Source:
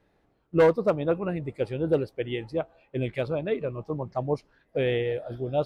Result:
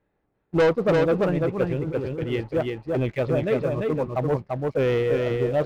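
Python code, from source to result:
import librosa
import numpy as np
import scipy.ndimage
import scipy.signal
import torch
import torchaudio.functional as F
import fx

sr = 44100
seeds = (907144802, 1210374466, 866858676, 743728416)

p1 = scipy.signal.sosfilt(scipy.signal.butter(2, 2600.0, 'lowpass', fs=sr, output='sos'), x)
p2 = fx.notch(p1, sr, hz=690.0, q=20.0)
p3 = fx.leveller(p2, sr, passes=2)
p4 = fx.over_compress(p3, sr, threshold_db=-27.0, ratio=-1.0, at=(1.73, 2.24))
p5 = p4 + fx.echo_single(p4, sr, ms=342, db=-3.0, dry=0)
y = F.gain(torch.from_numpy(p5), -2.0).numpy()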